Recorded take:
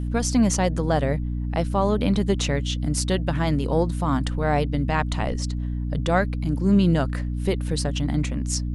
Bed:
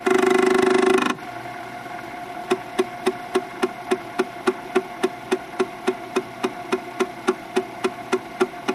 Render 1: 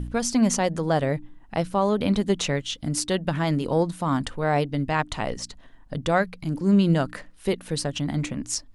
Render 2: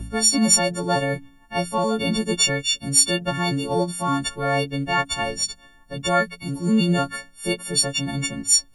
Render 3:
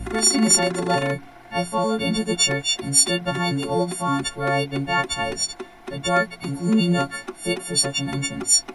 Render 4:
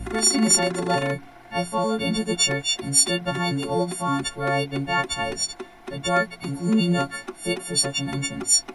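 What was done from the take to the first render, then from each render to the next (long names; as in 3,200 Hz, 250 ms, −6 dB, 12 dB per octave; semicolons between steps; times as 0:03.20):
hum removal 60 Hz, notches 5
every partial snapped to a pitch grid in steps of 4 semitones
mix in bed −13 dB
level −1.5 dB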